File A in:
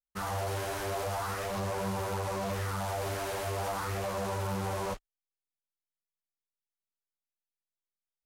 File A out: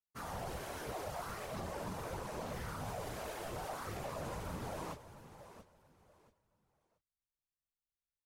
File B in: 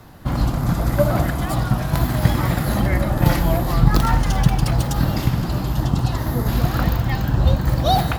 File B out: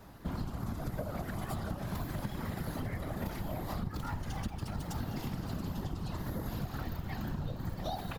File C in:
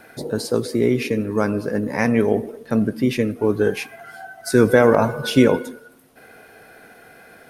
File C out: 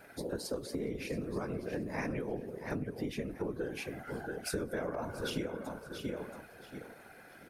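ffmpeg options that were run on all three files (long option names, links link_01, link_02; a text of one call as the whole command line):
ffmpeg -i in.wav -af "aecho=1:1:679|1358|2037:0.224|0.056|0.014,afftfilt=real='hypot(re,im)*cos(2*PI*random(0))':imag='hypot(re,im)*sin(2*PI*random(1))':win_size=512:overlap=0.75,acompressor=threshold=-30dB:ratio=12,volume=-3dB" out.wav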